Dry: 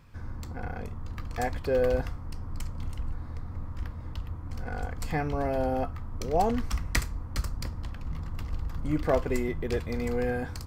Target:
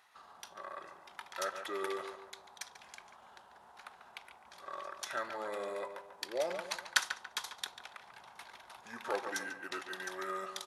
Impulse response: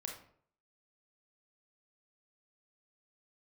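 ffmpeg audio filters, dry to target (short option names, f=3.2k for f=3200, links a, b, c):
-filter_complex "[0:a]highpass=1.3k,asetrate=34006,aresample=44100,atempo=1.29684,asplit=2[a][b];[b]adelay=142,lowpass=f=2.6k:p=1,volume=-8dB,asplit=2[c][d];[d]adelay=142,lowpass=f=2.6k:p=1,volume=0.4,asplit=2[e][f];[f]adelay=142,lowpass=f=2.6k:p=1,volume=0.4,asplit=2[g][h];[h]adelay=142,lowpass=f=2.6k:p=1,volume=0.4,asplit=2[i][j];[j]adelay=142,lowpass=f=2.6k:p=1,volume=0.4[k];[c][e][g][i][k]amix=inputs=5:normalize=0[l];[a][l]amix=inputs=2:normalize=0,volume=1.5dB"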